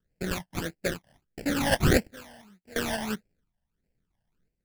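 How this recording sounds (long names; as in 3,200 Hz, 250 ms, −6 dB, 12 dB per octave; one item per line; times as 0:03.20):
aliases and images of a low sample rate 1,100 Hz, jitter 20%
sample-and-hold tremolo 2.9 Hz, depth 95%
phaser sweep stages 12, 1.6 Hz, lowest notch 400–1,200 Hz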